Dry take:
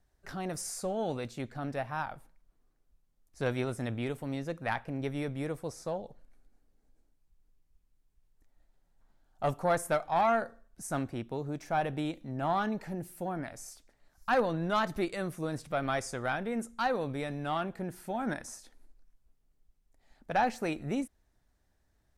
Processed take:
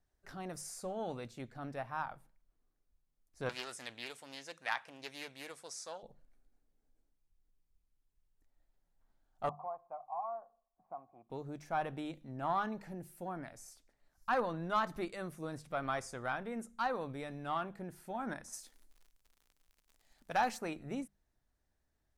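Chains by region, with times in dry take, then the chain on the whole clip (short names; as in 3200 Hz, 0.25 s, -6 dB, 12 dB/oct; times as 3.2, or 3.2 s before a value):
3.49–6.03 weighting filter ITU-R 468 + Doppler distortion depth 0.24 ms
9.49–11.3 vocal tract filter a + three-band squash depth 70%
18.52–20.57 high shelf 3400 Hz +12 dB + crackle 90/s -46 dBFS
whole clip: notches 50/100/150/200 Hz; dynamic EQ 1100 Hz, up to +7 dB, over -44 dBFS, Q 1.8; gain -7.5 dB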